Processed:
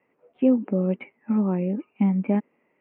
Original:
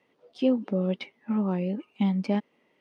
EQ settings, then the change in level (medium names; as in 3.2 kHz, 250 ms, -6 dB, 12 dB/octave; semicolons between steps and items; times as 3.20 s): dynamic bell 270 Hz, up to +6 dB, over -37 dBFS, Q 0.79; elliptic low-pass 2.5 kHz, stop band 50 dB; 0.0 dB